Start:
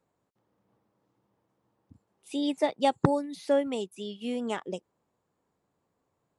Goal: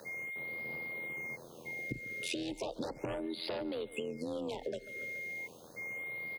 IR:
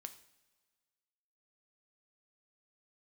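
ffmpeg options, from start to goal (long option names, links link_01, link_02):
-filter_complex "[0:a]tremolo=f=84:d=0.824,aeval=exprs='0.251*sin(PI/2*7.08*val(0)/0.251)':channel_layout=same,aeval=exprs='val(0)+0.00891*sin(2*PI*2100*n/s)':channel_layout=same,afreqshift=30,acrossover=split=1100|5900[link_01][link_02][link_03];[link_01]acompressor=threshold=-27dB:ratio=4[link_04];[link_02]acompressor=threshold=-37dB:ratio=4[link_05];[link_03]acompressor=threshold=-50dB:ratio=4[link_06];[link_04][link_05][link_06]amix=inputs=3:normalize=0,aeval=exprs='val(0)*gte(abs(val(0)),0.00266)':channel_layout=same,equalizer=frequency=125:width_type=o:width=1:gain=5,equalizer=frequency=500:width_type=o:width=1:gain=10,equalizer=frequency=4000:width_type=o:width=1:gain=8,alimiter=limit=-17dB:level=0:latency=1:release=116,equalizer=frequency=2700:width_type=o:width=0.36:gain=3,asplit=2[link_07][link_08];[link_08]aecho=0:1:141|282|423|564:0.0944|0.0491|0.0255|0.0133[link_09];[link_07][link_09]amix=inputs=2:normalize=0,acompressor=threshold=-35dB:ratio=10,afftfilt=real='re*(1-between(b*sr/1024,900*pow(7400/900,0.5+0.5*sin(2*PI*0.35*pts/sr))/1.41,900*pow(7400/900,0.5+0.5*sin(2*PI*0.35*pts/sr))*1.41))':imag='im*(1-between(b*sr/1024,900*pow(7400/900,0.5+0.5*sin(2*PI*0.35*pts/sr))/1.41,900*pow(7400/900,0.5+0.5*sin(2*PI*0.35*pts/sr))*1.41))':win_size=1024:overlap=0.75"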